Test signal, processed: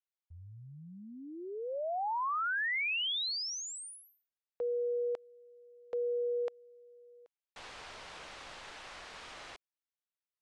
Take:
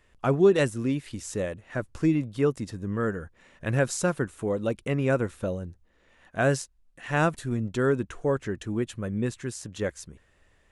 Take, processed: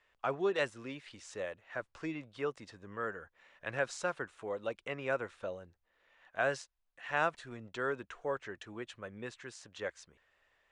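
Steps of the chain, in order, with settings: steep low-pass 9600 Hz 36 dB/oct; three-band isolator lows -17 dB, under 510 Hz, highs -14 dB, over 5100 Hz; gain -4.5 dB

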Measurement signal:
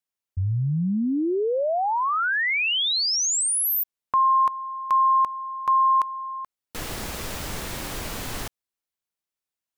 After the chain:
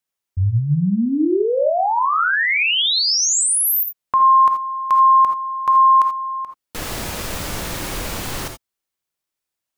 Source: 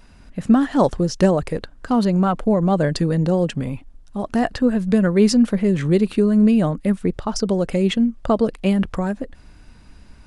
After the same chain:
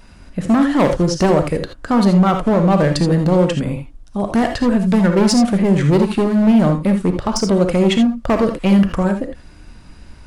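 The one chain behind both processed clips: hard clip -15 dBFS; non-linear reverb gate 0.1 s rising, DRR 5.5 dB; gain +4.5 dB

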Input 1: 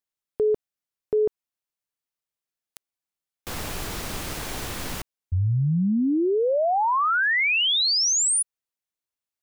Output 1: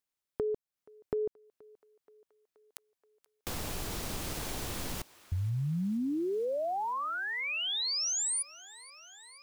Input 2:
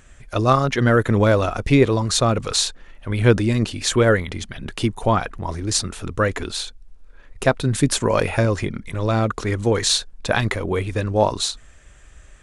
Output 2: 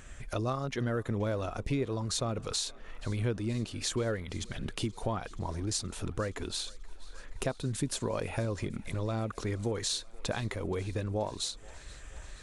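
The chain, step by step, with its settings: compressor 3:1, threshold -34 dBFS; thinning echo 0.477 s, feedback 79%, high-pass 410 Hz, level -22.5 dB; dynamic EQ 1700 Hz, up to -4 dB, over -49 dBFS, Q 0.8

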